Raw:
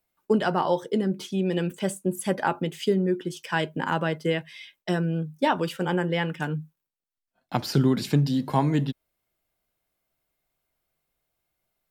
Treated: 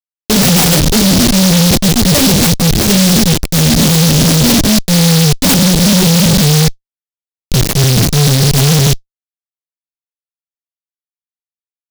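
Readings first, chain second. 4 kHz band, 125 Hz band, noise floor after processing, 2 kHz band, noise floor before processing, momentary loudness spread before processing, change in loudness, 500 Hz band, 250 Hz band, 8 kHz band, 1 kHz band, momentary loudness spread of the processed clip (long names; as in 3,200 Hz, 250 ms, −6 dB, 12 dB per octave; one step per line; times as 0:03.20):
+24.5 dB, +18.5 dB, below −85 dBFS, +13.0 dB, −84 dBFS, 8 LU, +17.5 dB, +9.5 dB, +16.0 dB, +31.0 dB, +7.5 dB, 3 LU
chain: samples sorted by size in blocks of 16 samples
dynamic equaliser 9,800 Hz, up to −3 dB, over −46 dBFS, Q 2.1
reversed playback
upward compression, threshold −42 dBFS
reversed playback
comb filter 7.1 ms, depth 53%
on a send: echo through a band-pass that steps 726 ms, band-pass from 820 Hz, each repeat 0.7 octaves, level −9 dB
on the sum: gate on every frequency bin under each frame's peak −30 dB strong
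flanger 1.9 Hz, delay 5.9 ms, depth 9.3 ms, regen +17%
delay with pitch and tempo change per echo 108 ms, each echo +6 semitones, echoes 3, each echo −6 dB
drawn EQ curve 190 Hz 0 dB, 290 Hz −16 dB, 870 Hz −20 dB, 1,300 Hz −30 dB, 2,500 Hz −28 dB, 5,700 Hz −6 dB, 8,500 Hz −3 dB
comparator with hysteresis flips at −42 dBFS
boost into a limiter +34 dB
short delay modulated by noise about 4,500 Hz, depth 0.27 ms
level −6 dB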